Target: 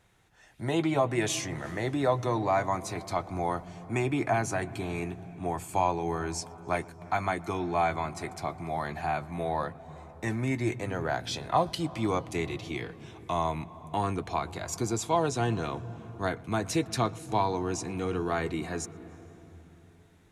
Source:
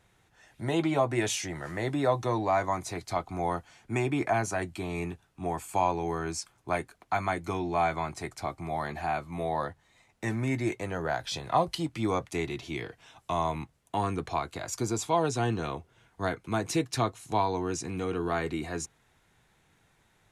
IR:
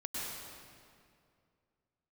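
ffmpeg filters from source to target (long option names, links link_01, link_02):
-filter_complex "[0:a]asplit=2[link_01][link_02];[link_02]aemphasis=mode=reproduction:type=bsi[link_03];[1:a]atrim=start_sample=2205,asetrate=27342,aresample=44100,adelay=119[link_04];[link_03][link_04]afir=irnorm=-1:irlink=0,volume=-23.5dB[link_05];[link_01][link_05]amix=inputs=2:normalize=0"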